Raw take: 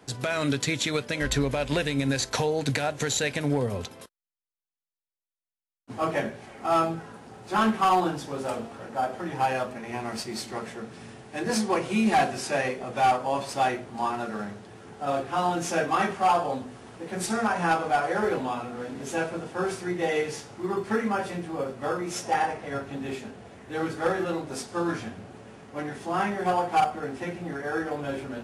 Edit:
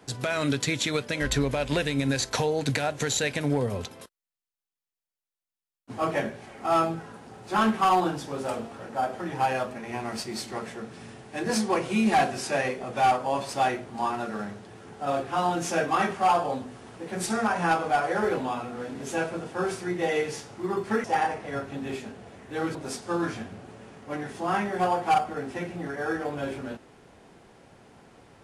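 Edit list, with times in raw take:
21.04–22.23 cut
23.94–24.41 cut

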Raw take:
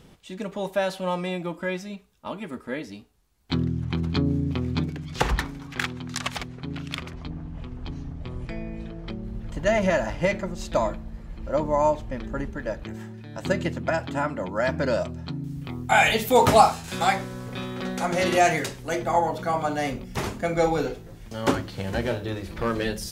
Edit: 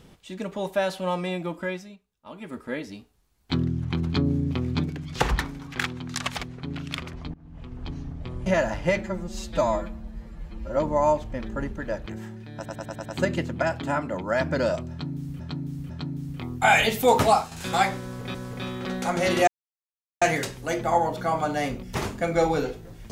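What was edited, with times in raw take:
1.61–2.6 dip -15.5 dB, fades 0.39 s
7.34–7.82 fade in, from -22 dB
8.46–9.82 cut
10.37–11.54 stretch 1.5×
13.33 stutter 0.10 s, 6 plays
15.17–15.67 loop, 3 plays
16.27–16.79 fade out, to -8 dB
17.3–17.62 loop, 2 plays
18.43 insert silence 0.74 s

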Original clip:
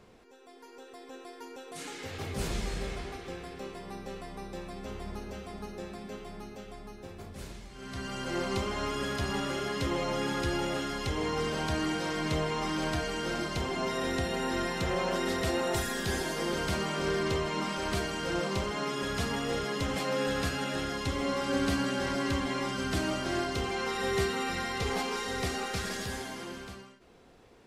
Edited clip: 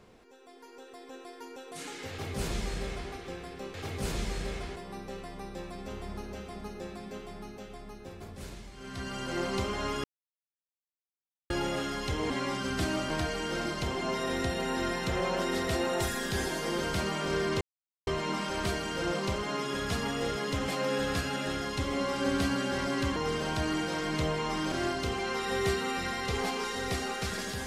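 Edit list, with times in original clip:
2.1–3.12 copy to 3.74
9.02–10.48 mute
11.28–12.84 swap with 22.44–23.24
17.35 insert silence 0.46 s

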